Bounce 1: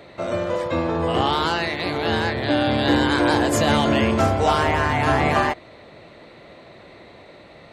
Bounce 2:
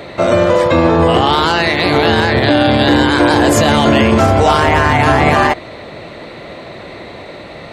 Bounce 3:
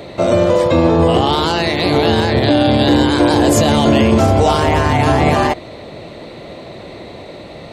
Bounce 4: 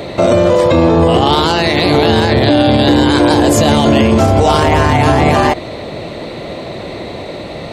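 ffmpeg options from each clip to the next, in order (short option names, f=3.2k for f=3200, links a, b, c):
-af "alimiter=level_in=15dB:limit=-1dB:release=50:level=0:latency=1,volume=-1dB"
-af "equalizer=f=1.6k:t=o:w=1.5:g=-8"
-af "alimiter=level_in=8.5dB:limit=-1dB:release=50:level=0:latency=1,volume=-1dB"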